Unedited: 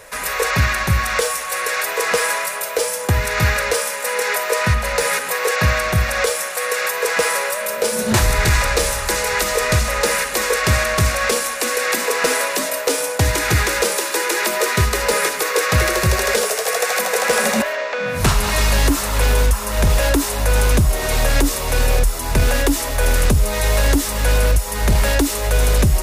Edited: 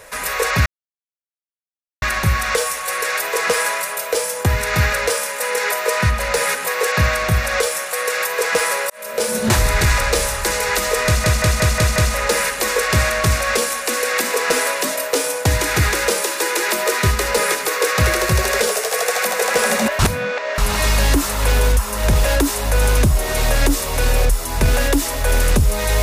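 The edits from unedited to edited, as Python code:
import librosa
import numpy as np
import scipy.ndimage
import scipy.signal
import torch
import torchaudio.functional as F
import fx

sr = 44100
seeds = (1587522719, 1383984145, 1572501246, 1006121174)

y = fx.edit(x, sr, fx.insert_silence(at_s=0.66, length_s=1.36),
    fx.fade_in_span(start_s=7.54, length_s=0.34),
    fx.stutter(start_s=9.7, slice_s=0.18, count=6),
    fx.reverse_span(start_s=17.73, length_s=0.59), tone=tone)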